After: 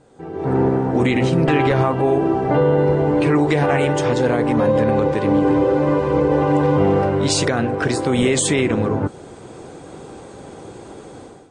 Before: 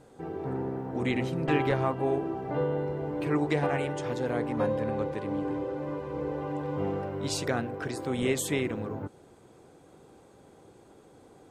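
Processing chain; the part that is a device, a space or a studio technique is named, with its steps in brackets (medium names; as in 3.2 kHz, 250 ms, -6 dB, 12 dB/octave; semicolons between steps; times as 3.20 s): low-bitrate web radio (level rider gain up to 16 dB; peak limiter -9.5 dBFS, peak gain reduction 7.5 dB; trim +2.5 dB; MP3 40 kbps 22.05 kHz)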